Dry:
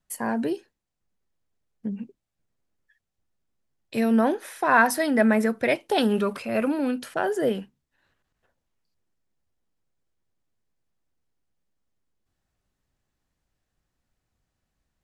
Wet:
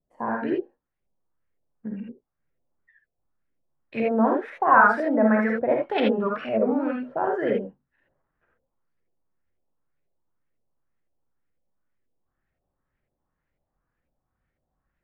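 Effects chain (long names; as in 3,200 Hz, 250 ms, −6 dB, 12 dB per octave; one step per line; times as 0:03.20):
auto-filter low-pass saw up 2 Hz 480–2,400 Hz
reverb whose tail is shaped and stops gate 100 ms rising, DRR −0.5 dB
wow of a warped record 33 1/3 rpm, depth 160 cents
level −4.5 dB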